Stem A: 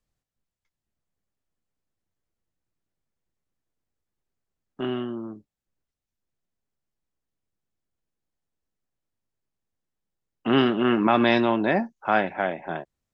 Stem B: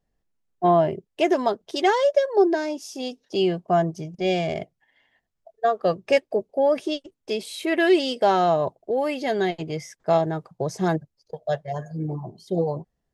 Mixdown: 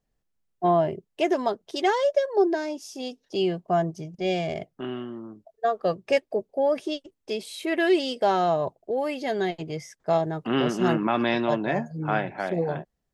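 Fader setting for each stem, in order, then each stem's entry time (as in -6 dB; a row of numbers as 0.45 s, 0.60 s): -4.5 dB, -3.0 dB; 0.00 s, 0.00 s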